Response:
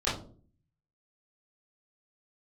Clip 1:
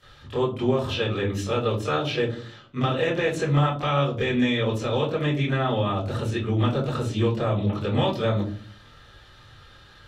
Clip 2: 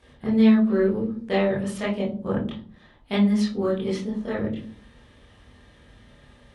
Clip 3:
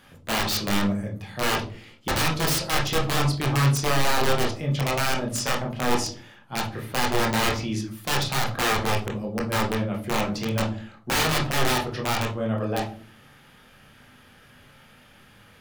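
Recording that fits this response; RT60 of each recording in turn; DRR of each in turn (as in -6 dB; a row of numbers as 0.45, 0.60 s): 1; 0.45, 0.45, 0.45 s; -12.5, -7.5, -1.0 dB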